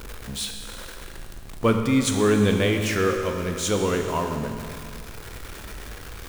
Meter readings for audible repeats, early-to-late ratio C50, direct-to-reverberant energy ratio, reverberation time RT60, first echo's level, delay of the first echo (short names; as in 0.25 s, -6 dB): none, 5.0 dB, 3.5 dB, 2.2 s, none, none